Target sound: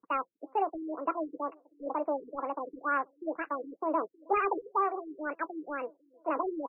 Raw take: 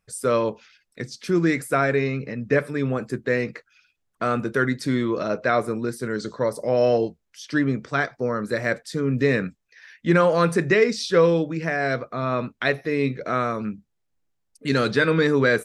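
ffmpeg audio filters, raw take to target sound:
ffmpeg -i in.wav -filter_complex "[0:a]highpass=90,acrossover=split=330|1400[link_01][link_02][link_03];[link_01]aecho=1:1:746|1492|2238:0.0708|0.0276|0.0108[link_04];[link_02]asoftclip=type=tanh:threshold=-19dB[link_05];[link_04][link_05][link_03]amix=inputs=3:normalize=0,asetrate=103194,aresample=44100,afftfilt=real='re*lt(b*sr/1024,450*pow(2900/450,0.5+0.5*sin(2*PI*2.1*pts/sr)))':imag='im*lt(b*sr/1024,450*pow(2900/450,0.5+0.5*sin(2*PI*2.1*pts/sr)))':win_size=1024:overlap=0.75,volume=-7dB" out.wav

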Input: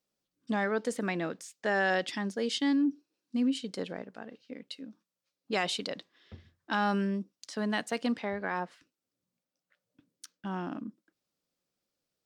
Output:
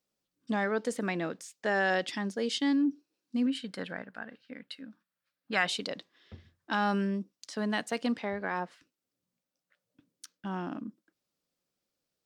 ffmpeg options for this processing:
ffmpeg -i in.wav -filter_complex "[0:a]asettb=1/sr,asplit=3[link_01][link_02][link_03];[link_01]atrim=end=3.464[link_04];[link_02]atrim=start=3.46:end=5.68,asetpts=PTS-STARTPTS,afade=type=in:duration=0.004:curve=qsin,afade=type=out:start_time=2.216:duration=0.004:curve=qsin,equalizer=frequency=400:width_type=o:width=0.67:gain=-7,equalizer=frequency=1600:width_type=o:width=0.67:gain=10,equalizer=frequency=6300:width_type=o:width=0.67:gain=-8[link_05];[link_03]atrim=start=5.676[link_06];[link_04][link_05]acrossfade=duration=0.004:curve1=hsin:curve2=qsin[link_07];[link_07][link_06]acrossfade=duration=0.004:curve1=qsin:curve2=hsin" out.wav

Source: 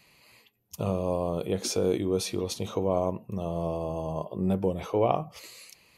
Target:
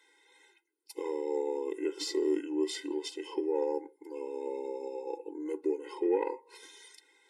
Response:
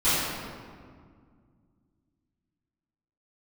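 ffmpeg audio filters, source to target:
-af "acontrast=46,asetrate=36162,aresample=44100,afftfilt=real='re*eq(mod(floor(b*sr/1024/270),2),1)':imag='im*eq(mod(floor(b*sr/1024/270),2),1)':win_size=1024:overlap=0.75,volume=-8dB"

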